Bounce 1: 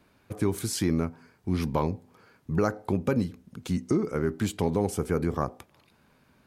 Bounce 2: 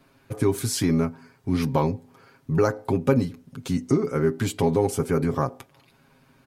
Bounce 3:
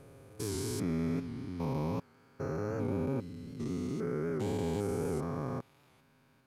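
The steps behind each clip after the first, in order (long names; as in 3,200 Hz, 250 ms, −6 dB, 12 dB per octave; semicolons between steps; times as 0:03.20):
comb filter 7.4 ms, depth 70%; level +2.5 dB
spectrum averaged block by block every 400 ms; wow of a warped record 78 rpm, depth 100 cents; level −7 dB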